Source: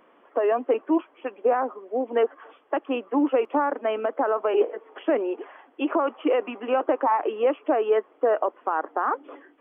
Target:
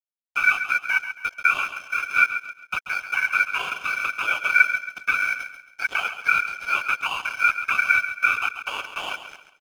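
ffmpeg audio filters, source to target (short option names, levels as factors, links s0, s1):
-filter_complex "[0:a]asplit=2[s0][s1];[s1]acompressor=threshold=0.0251:ratio=6,volume=0.841[s2];[s0][s2]amix=inputs=2:normalize=0,afftfilt=real='hypot(re,im)*cos(2*PI*random(0))':imag='hypot(re,im)*sin(2*PI*random(1))':win_size=512:overlap=0.75,highpass=f=410:t=q:w=4.9,aeval=exprs='val(0)*sin(2*PI*1900*n/s)':c=same,aeval=exprs='sgn(val(0))*max(abs(val(0))-0.0126,0)':c=same,asplit=2[s3][s4];[s4]aecho=0:1:136|272|408|544:0.299|0.102|0.0345|0.0117[s5];[s3][s5]amix=inputs=2:normalize=0"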